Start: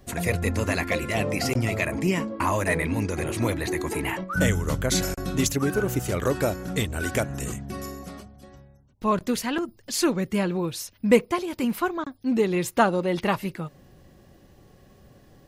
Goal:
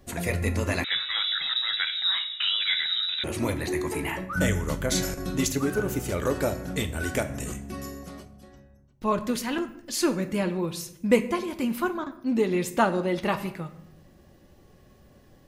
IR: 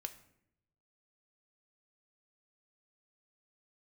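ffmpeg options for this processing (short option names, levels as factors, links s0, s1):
-filter_complex "[1:a]atrim=start_sample=2205,asetrate=43218,aresample=44100[s0];[0:a][s0]afir=irnorm=-1:irlink=0,asettb=1/sr,asplit=3[s1][s2][s3];[s1]atrim=end=0.844[s4];[s2]atrim=start=0.84:end=3.24,asetpts=PTS-STARTPTS,afade=t=in:d=0.004:c=qsin,afade=t=out:st=2.396:d=0.004:c=qsin,lowpass=f=3400:t=q:w=0.5098,lowpass=f=3400:t=q:w=0.6013,lowpass=f=3400:t=q:w=0.9,lowpass=f=3400:t=q:w=2.563,afreqshift=-4000[s5];[s3]atrim=start=3.236[s6];[s4][s5]acrossfade=d=0.004:c1=hsin:c2=qsin[s7];[s7][s6]acrossfade=d=0.004:c1=qsin:c2=hsin,volume=1.12"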